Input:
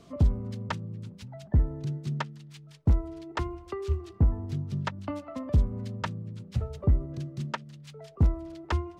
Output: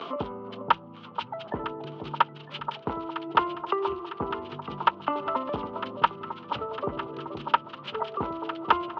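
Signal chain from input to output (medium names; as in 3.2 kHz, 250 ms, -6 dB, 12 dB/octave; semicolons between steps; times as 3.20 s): gate with hold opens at -44 dBFS; upward compressor, threshold -30 dBFS; cabinet simulation 410–3400 Hz, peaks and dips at 430 Hz +4 dB, 640 Hz -3 dB, 910 Hz +9 dB, 1.3 kHz +9 dB, 1.9 kHz -5 dB, 3 kHz +7 dB; on a send: echo whose repeats swap between lows and highs 477 ms, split 1.1 kHz, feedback 78%, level -8 dB; on the sum: trim +5.5 dB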